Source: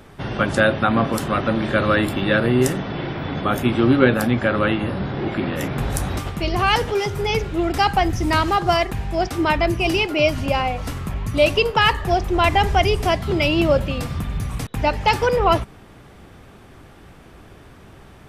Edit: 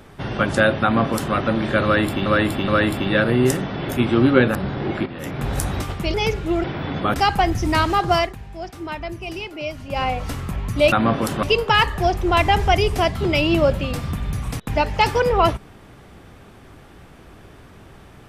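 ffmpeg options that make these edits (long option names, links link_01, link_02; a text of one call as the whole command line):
ffmpeg -i in.wav -filter_complex "[0:a]asplit=13[link_01][link_02][link_03][link_04][link_05][link_06][link_07][link_08][link_09][link_10][link_11][link_12][link_13];[link_01]atrim=end=2.262[link_14];[link_02]atrim=start=1.838:end=2.262[link_15];[link_03]atrim=start=1.838:end=3.052[link_16];[link_04]atrim=start=3.548:end=4.212[link_17];[link_05]atrim=start=4.918:end=5.43,asetpts=PTS-STARTPTS,afade=type=out:start_time=0.508:duration=0.004:curve=hsin:silence=0.237137[link_18];[link_06]atrim=start=5.43:end=6.512,asetpts=PTS-STARTPTS,afade=type=in:duration=0.47:silence=0.237137[link_19];[link_07]atrim=start=7.218:end=7.722[link_20];[link_08]atrim=start=3.048:end=3.552[link_21];[link_09]atrim=start=7.718:end=8.93,asetpts=PTS-STARTPTS,afade=type=out:start_time=1.062:duration=0.15:silence=0.281838[link_22];[link_10]atrim=start=8.93:end=10.47,asetpts=PTS-STARTPTS,volume=-11dB[link_23];[link_11]atrim=start=10.47:end=11.502,asetpts=PTS-STARTPTS,afade=type=in:duration=0.15:silence=0.281838[link_24];[link_12]atrim=start=0.828:end=1.342[link_25];[link_13]atrim=start=11.498[link_26];[link_14][link_15]acrossfade=duration=0.004:curve1=hsin:curve2=hsin[link_27];[link_27][link_16]acrossfade=duration=0.004:curve1=hsin:curve2=hsin[link_28];[link_28][link_17]acrossfade=duration=0.004:curve1=hsin:curve2=hsin[link_29];[link_18][link_19]concat=n=2:v=0:a=1[link_30];[link_29][link_30]acrossfade=duration=0.004:curve1=hsin:curve2=hsin[link_31];[link_31][link_20]acrossfade=duration=0.004:curve1=hsin:curve2=hsin[link_32];[link_32][link_21]acrossfade=duration=0.004:curve1=hsin:curve2=hsin[link_33];[link_22][link_23][link_24]concat=n=3:v=0:a=1[link_34];[link_33][link_34]acrossfade=duration=0.004:curve1=hsin:curve2=hsin[link_35];[link_35][link_25]acrossfade=duration=0.004:curve1=hsin:curve2=hsin[link_36];[link_36][link_26]acrossfade=duration=0.004:curve1=hsin:curve2=hsin" out.wav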